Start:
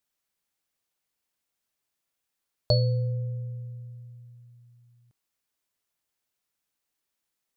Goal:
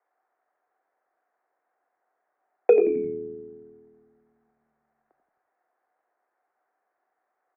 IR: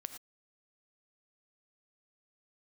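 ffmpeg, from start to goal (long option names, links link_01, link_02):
-filter_complex "[0:a]equalizer=frequency=1100:width_type=o:width=0.21:gain=14.5,highpass=frequency=340:width_type=q:width=0.5412,highpass=frequency=340:width_type=q:width=1.307,lowpass=frequency=3100:width_type=q:width=0.5176,lowpass=frequency=3100:width_type=q:width=0.7071,lowpass=frequency=3100:width_type=q:width=1.932,afreqshift=300,asetrate=23361,aresample=44100,atempo=1.88775,asplit=5[link_01][link_02][link_03][link_04][link_05];[link_02]adelay=87,afreqshift=-79,volume=-10dB[link_06];[link_03]adelay=174,afreqshift=-158,volume=-17.5dB[link_07];[link_04]adelay=261,afreqshift=-237,volume=-25.1dB[link_08];[link_05]adelay=348,afreqshift=-316,volume=-32.6dB[link_09];[link_01][link_06][link_07][link_08][link_09]amix=inputs=5:normalize=0,asplit=2[link_10][link_11];[1:a]atrim=start_sample=2205[link_12];[link_11][link_12]afir=irnorm=-1:irlink=0,volume=-0.5dB[link_13];[link_10][link_13]amix=inputs=2:normalize=0,acontrast=75"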